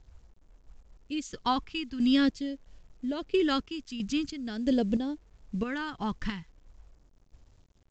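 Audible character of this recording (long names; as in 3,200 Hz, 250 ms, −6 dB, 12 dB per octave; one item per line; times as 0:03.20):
phaser sweep stages 2, 0.45 Hz, lowest notch 560–1,300 Hz
chopped level 1.5 Hz, depth 60%, duty 45%
a quantiser's noise floor 12 bits, dither none
mu-law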